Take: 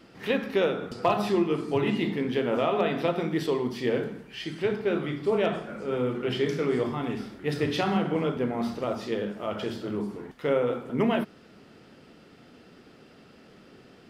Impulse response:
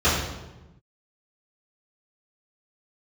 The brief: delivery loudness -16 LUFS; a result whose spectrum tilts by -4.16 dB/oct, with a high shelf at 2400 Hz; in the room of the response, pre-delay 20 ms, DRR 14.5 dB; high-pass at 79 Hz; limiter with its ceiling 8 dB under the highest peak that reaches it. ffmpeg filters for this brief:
-filter_complex "[0:a]highpass=79,highshelf=f=2.4k:g=7.5,alimiter=limit=-17.5dB:level=0:latency=1,asplit=2[a][b];[1:a]atrim=start_sample=2205,adelay=20[c];[b][c]afir=irnorm=-1:irlink=0,volume=-34dB[d];[a][d]amix=inputs=2:normalize=0,volume=13dB"

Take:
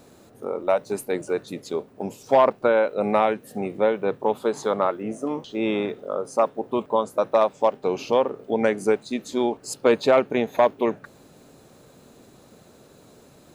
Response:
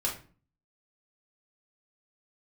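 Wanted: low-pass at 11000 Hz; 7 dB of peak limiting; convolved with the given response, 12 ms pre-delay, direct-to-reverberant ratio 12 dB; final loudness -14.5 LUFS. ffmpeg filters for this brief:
-filter_complex "[0:a]lowpass=11k,alimiter=limit=-14.5dB:level=0:latency=1,asplit=2[a][b];[1:a]atrim=start_sample=2205,adelay=12[c];[b][c]afir=irnorm=-1:irlink=0,volume=-17.5dB[d];[a][d]amix=inputs=2:normalize=0,volume=12.5dB"

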